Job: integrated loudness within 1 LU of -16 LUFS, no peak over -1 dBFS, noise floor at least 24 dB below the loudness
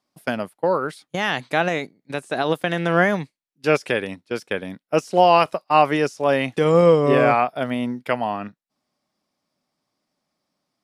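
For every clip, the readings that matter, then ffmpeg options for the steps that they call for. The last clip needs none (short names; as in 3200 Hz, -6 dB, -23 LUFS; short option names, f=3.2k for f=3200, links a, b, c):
loudness -20.5 LUFS; peak -3.0 dBFS; loudness target -16.0 LUFS
-> -af "volume=4.5dB,alimiter=limit=-1dB:level=0:latency=1"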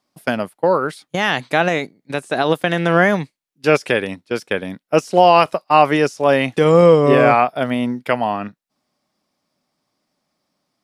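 loudness -16.5 LUFS; peak -1.0 dBFS; noise floor -78 dBFS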